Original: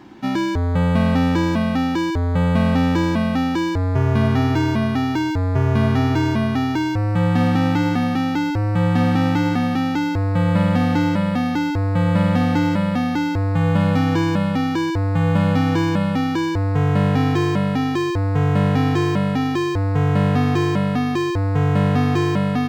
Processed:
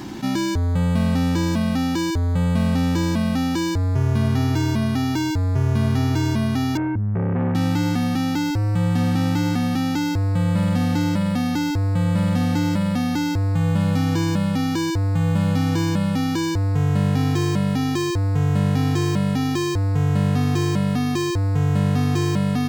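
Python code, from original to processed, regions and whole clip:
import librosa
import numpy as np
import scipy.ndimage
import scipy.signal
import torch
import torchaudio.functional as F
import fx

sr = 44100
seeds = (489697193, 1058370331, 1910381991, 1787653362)

y = fx.chain(x, sr, fx.lowpass(hz=2000.0, slope=24),
    fx.resample_bad(factor=8, down='none', up='filtered'),
    fx.transformer_sat(knee_hz=360.0), at=(6.77, 7.55))
y = fx.bass_treble(y, sr, bass_db=6, treble_db=13)
y = fx.env_flatten(y, sr, amount_pct=50)
y = y * 10.0 ** (-8.0 / 20.0)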